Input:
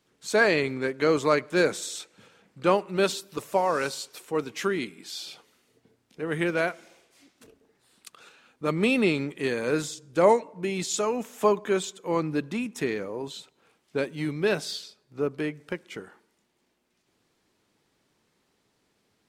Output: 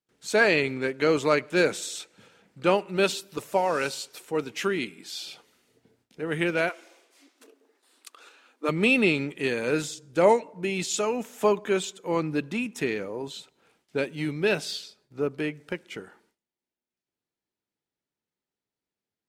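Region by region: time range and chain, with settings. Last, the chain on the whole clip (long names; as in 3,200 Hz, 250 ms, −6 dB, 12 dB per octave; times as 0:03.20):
0:06.69–0:08.69: linear-phase brick-wall high-pass 240 Hz + parametric band 1,100 Hz +6.5 dB 0.22 octaves
whole clip: noise gate with hold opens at −58 dBFS; notch filter 1,100 Hz, Q 13; dynamic equaliser 2,700 Hz, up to +6 dB, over −48 dBFS, Q 3.1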